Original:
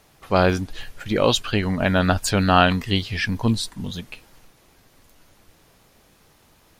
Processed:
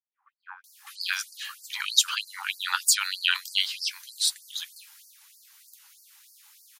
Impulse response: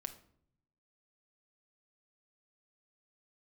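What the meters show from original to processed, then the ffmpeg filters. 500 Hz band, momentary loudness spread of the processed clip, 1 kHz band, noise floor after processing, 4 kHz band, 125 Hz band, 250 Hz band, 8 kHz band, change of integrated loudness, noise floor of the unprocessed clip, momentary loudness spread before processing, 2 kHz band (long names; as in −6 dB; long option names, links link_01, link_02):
below −40 dB, 14 LU, −14.5 dB, −77 dBFS, +1.5 dB, below −40 dB, below −40 dB, +6.5 dB, −5.5 dB, −57 dBFS, 15 LU, −4.5 dB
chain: -filter_complex "[0:a]aemphasis=mode=production:type=cd,acrossover=split=150|1000[link_01][link_02][link_03];[link_02]adelay=40[link_04];[link_03]adelay=640[link_05];[link_01][link_04][link_05]amix=inputs=3:normalize=0,afftfilt=real='re*gte(b*sr/1024,770*pow(4400/770,0.5+0.5*sin(2*PI*3.2*pts/sr)))':imag='im*gte(b*sr/1024,770*pow(4400/770,0.5+0.5*sin(2*PI*3.2*pts/sr)))':win_size=1024:overlap=0.75"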